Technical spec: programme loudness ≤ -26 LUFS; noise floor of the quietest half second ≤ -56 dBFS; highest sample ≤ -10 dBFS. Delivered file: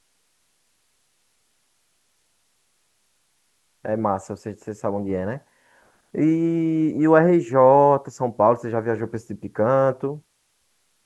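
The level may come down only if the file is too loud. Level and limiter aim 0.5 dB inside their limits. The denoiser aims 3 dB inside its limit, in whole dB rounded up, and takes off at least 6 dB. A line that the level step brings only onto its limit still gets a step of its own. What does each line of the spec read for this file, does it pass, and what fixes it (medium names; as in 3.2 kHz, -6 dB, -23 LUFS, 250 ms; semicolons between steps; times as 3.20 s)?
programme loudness -20.5 LUFS: fail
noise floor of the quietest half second -67 dBFS: pass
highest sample -3.0 dBFS: fail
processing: trim -6 dB; peak limiter -10.5 dBFS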